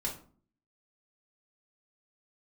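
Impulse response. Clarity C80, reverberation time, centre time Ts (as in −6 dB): 14.5 dB, 0.45 s, 21 ms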